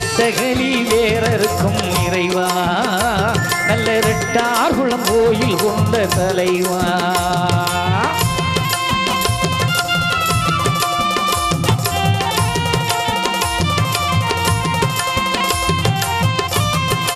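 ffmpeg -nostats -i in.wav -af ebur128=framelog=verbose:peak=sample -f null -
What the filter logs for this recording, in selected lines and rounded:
Integrated loudness:
  I:         -16.1 LUFS
  Threshold: -26.1 LUFS
Loudness range:
  LRA:         1.1 LU
  Threshold: -36.1 LUFS
  LRA low:   -16.6 LUFS
  LRA high:  -15.5 LUFS
Sample peak:
  Peak:       -3.3 dBFS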